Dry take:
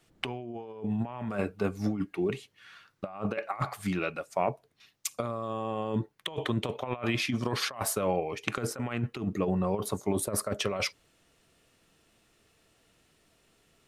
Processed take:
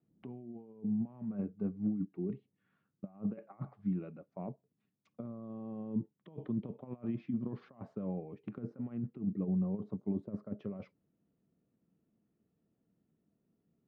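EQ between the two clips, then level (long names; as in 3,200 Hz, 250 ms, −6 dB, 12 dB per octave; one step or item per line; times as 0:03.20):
resonant band-pass 200 Hz, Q 2.2
high-frequency loss of the air 180 metres
−1.0 dB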